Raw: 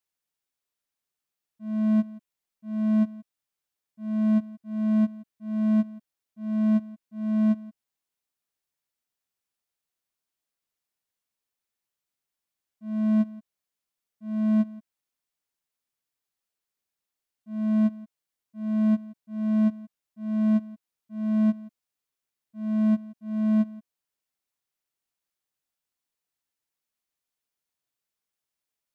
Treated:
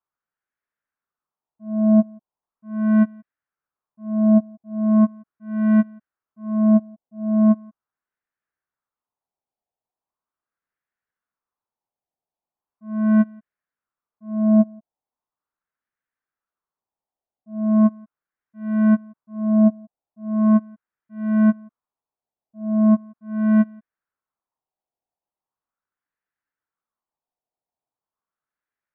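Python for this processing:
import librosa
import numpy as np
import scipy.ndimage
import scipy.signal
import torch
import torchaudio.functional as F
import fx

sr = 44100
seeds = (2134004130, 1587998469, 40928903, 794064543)

y = fx.filter_lfo_lowpass(x, sr, shape='sine', hz=0.39, low_hz=750.0, high_hz=1700.0, q=3.1)
y = fx.upward_expand(y, sr, threshold_db=-34.0, expansion=1.5)
y = y * librosa.db_to_amplitude(7.0)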